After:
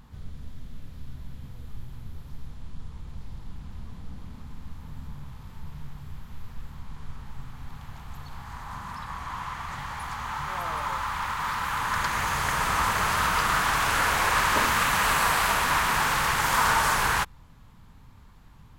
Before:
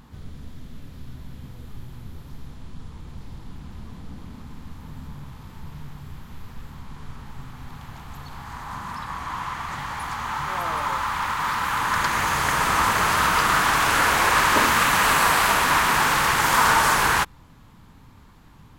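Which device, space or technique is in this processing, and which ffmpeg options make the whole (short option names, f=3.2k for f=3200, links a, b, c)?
low shelf boost with a cut just above: -af "lowshelf=f=76:g=7,equalizer=f=310:t=o:w=0.74:g=-4.5,volume=-4.5dB"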